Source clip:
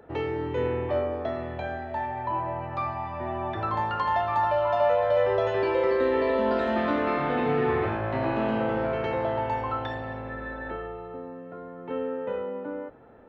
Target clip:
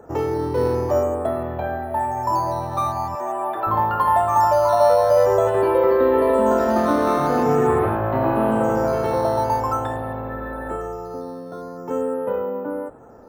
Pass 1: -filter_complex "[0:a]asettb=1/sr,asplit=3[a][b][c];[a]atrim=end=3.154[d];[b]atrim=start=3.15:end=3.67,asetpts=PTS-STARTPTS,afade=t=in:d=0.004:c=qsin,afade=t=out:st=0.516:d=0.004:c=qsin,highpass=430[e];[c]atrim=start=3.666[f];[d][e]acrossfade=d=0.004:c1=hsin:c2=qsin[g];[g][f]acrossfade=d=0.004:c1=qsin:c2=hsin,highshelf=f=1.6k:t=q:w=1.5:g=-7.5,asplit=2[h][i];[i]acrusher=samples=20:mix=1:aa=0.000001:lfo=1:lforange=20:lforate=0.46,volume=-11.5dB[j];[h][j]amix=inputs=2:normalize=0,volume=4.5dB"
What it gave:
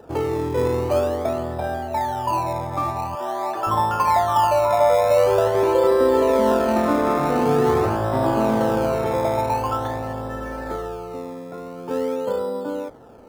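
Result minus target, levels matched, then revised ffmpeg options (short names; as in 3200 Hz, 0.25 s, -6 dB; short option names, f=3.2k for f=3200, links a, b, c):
decimation with a swept rate: distortion +13 dB
-filter_complex "[0:a]asettb=1/sr,asplit=3[a][b][c];[a]atrim=end=3.154[d];[b]atrim=start=3.15:end=3.67,asetpts=PTS-STARTPTS,afade=t=in:d=0.004:c=qsin,afade=t=out:st=0.516:d=0.004:c=qsin,highpass=430[e];[c]atrim=start=3.666[f];[d][e]acrossfade=d=0.004:c1=hsin:c2=qsin[g];[g][f]acrossfade=d=0.004:c1=qsin:c2=hsin,highshelf=f=1.6k:t=q:w=1.5:g=-7.5,asplit=2[h][i];[i]acrusher=samples=6:mix=1:aa=0.000001:lfo=1:lforange=6:lforate=0.46,volume=-11.5dB[j];[h][j]amix=inputs=2:normalize=0,volume=4.5dB"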